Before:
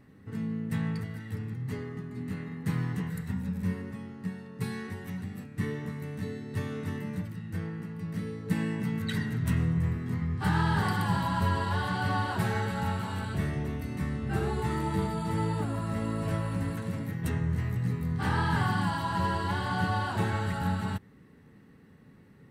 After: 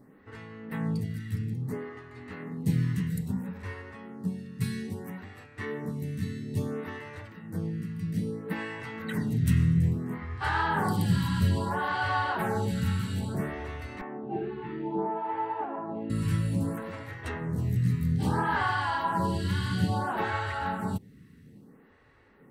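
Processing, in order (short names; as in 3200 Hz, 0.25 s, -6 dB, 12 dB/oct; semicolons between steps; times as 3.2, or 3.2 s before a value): 14.01–16.1 speaker cabinet 340–2300 Hz, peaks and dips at 360 Hz +6 dB, 540 Hz -6 dB, 790 Hz +9 dB, 1300 Hz -8 dB, 2000 Hz -7 dB; photocell phaser 0.6 Hz; gain +4.5 dB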